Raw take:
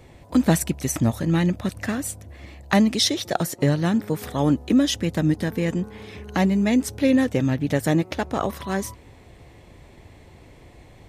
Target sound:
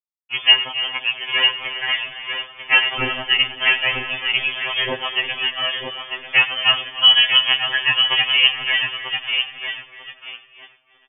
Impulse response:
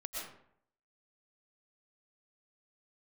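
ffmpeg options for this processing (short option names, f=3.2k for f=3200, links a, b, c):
-filter_complex "[0:a]highpass=f=540:w=0.5412,highpass=f=540:w=1.3066,bandreject=f=2k:w=5.4,aecho=1:1:4.5:0.33,aecho=1:1:945|1890|2835|3780:0.501|0.155|0.0482|0.0149,aeval=exprs='sgn(val(0))*max(abs(val(0))-0.00841,0)':c=same,lowpass=f=3k:t=q:w=0.5098,lowpass=f=3k:t=q:w=0.6013,lowpass=f=3k:t=q:w=0.9,lowpass=f=3k:t=q:w=2.563,afreqshift=-3500,asplit=2[a][b];[1:a]atrim=start_sample=2205,asetrate=27342,aresample=44100,adelay=96[c];[b][c]afir=irnorm=-1:irlink=0,volume=-14dB[d];[a][d]amix=inputs=2:normalize=0,alimiter=level_in=13.5dB:limit=-1dB:release=50:level=0:latency=1,afftfilt=real='re*2.45*eq(mod(b,6),0)':imag='im*2.45*eq(mod(b,6),0)':win_size=2048:overlap=0.75,volume=1.5dB"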